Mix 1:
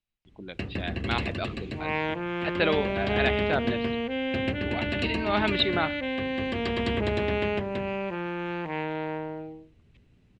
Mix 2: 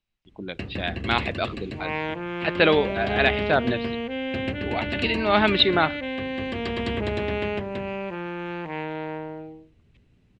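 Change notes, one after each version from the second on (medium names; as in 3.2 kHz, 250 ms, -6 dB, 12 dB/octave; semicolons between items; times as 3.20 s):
speech +6.5 dB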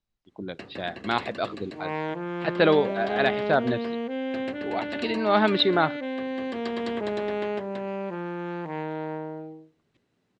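first sound: add frequency weighting A; master: add peaking EQ 2.6 kHz -10 dB 0.93 oct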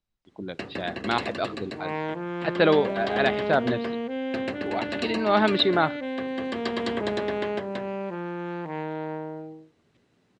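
first sound +6.5 dB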